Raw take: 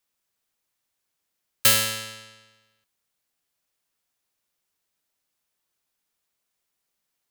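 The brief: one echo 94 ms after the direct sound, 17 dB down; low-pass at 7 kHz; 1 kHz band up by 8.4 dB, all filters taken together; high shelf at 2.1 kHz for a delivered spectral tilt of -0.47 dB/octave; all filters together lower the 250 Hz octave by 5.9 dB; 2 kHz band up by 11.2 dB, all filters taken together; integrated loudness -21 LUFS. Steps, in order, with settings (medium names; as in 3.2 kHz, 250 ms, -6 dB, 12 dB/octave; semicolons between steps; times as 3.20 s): low-pass 7 kHz; peaking EQ 250 Hz -7.5 dB; peaking EQ 1 kHz +5 dB; peaking EQ 2 kHz +8 dB; treble shelf 2.1 kHz +8.5 dB; delay 94 ms -17 dB; trim -6 dB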